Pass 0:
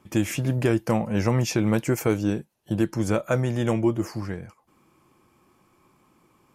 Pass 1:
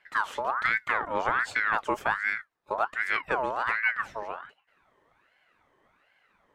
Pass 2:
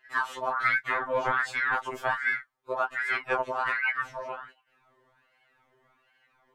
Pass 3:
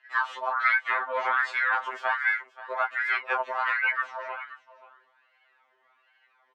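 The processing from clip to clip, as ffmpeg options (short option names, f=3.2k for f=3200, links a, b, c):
-af "aemphasis=mode=reproduction:type=75kf,aeval=exprs='val(0)*sin(2*PI*1300*n/s+1300*0.45/1.3*sin(2*PI*1.3*n/s))':c=same,volume=-2dB"
-af "afftfilt=real='re*2.45*eq(mod(b,6),0)':imag='im*2.45*eq(mod(b,6),0)':win_size=2048:overlap=0.75,volume=2dB"
-af "highpass=710,lowpass=4.1k,aecho=1:1:530:0.15,volume=2.5dB"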